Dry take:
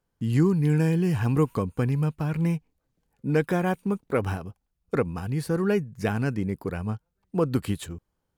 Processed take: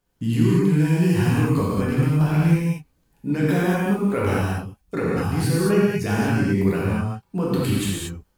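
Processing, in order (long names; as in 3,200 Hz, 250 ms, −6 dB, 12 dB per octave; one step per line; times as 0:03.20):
bass and treble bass +2 dB, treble −5 dB
brickwall limiter −19 dBFS, peak gain reduction 8.5 dB
high-shelf EQ 3,000 Hz +10.5 dB
reverb whose tail is shaped and stops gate 260 ms flat, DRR −7 dB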